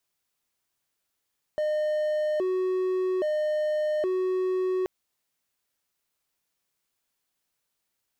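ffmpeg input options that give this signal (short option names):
-f lavfi -i "aevalsrc='0.0841*(1-4*abs(mod((490*t+119/0.61*(0.5-abs(mod(0.61*t,1)-0.5)))+0.25,1)-0.5))':d=3.28:s=44100"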